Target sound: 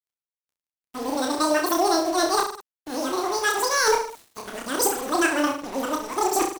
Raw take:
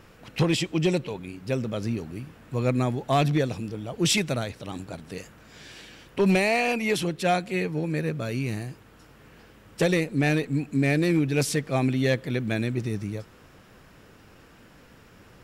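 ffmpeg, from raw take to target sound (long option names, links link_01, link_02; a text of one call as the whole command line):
ffmpeg -i in.wav -af "areverse,asetrate=103194,aresample=44100,equalizer=frequency=8400:width=3.6:gain=4,acrusher=bits=5:mix=0:aa=0.5,aecho=1:1:30|64.5|104.2|149.8|202.3:0.631|0.398|0.251|0.158|0.1" out.wav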